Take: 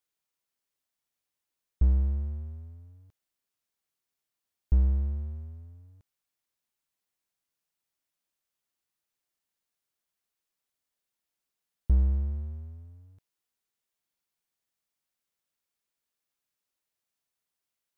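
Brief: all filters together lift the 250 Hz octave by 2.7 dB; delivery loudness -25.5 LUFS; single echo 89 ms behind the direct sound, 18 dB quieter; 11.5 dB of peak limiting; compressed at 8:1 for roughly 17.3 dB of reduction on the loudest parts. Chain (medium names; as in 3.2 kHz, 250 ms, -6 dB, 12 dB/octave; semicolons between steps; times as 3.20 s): peaking EQ 250 Hz +4 dB; compression 8:1, threshold -36 dBFS; peak limiter -36 dBFS; delay 89 ms -18 dB; trim +20.5 dB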